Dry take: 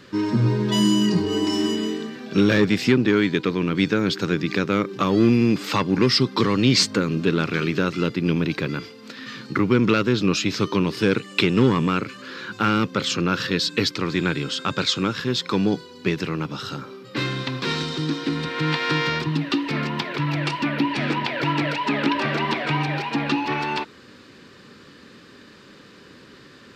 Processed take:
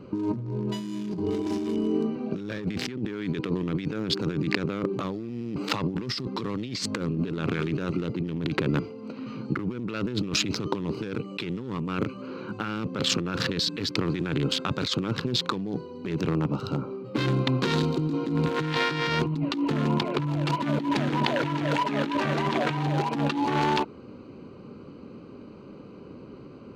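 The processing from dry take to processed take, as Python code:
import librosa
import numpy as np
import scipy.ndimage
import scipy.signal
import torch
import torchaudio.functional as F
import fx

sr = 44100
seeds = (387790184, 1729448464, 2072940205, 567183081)

y = fx.wiener(x, sr, points=25)
y = fx.over_compress(y, sr, threshold_db=-28.0, ratio=-1.0)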